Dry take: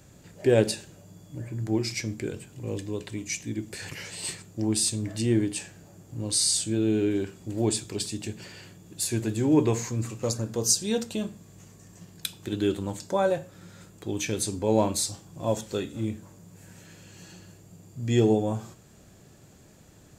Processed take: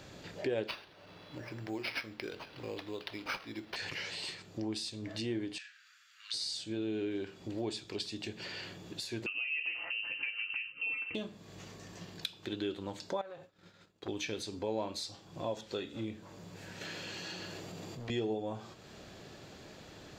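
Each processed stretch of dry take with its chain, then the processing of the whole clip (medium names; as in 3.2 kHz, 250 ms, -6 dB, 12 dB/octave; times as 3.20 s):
0.67–3.76 s: bass shelf 440 Hz -10 dB + careless resampling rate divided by 6×, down none, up hold
5.58–6.34 s: steep high-pass 1.3 kHz 72 dB/octave + treble shelf 4.6 kHz -8.5 dB
9.26–11.15 s: compression 2.5:1, threshold -36 dBFS + comb 5.4 ms, depth 73% + frequency inversion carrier 2.9 kHz
13.21–14.08 s: expander -38 dBFS + compression 4:1, threshold -37 dBFS + transformer saturation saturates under 1.1 kHz
16.81–18.10 s: bass shelf 91 Hz -11.5 dB + hard clipper -39 dBFS + level flattener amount 70%
whole clip: tone controls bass -9 dB, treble +1 dB; compression 2.5:1, threshold -48 dBFS; resonant high shelf 6.1 kHz -13.5 dB, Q 1.5; trim +6.5 dB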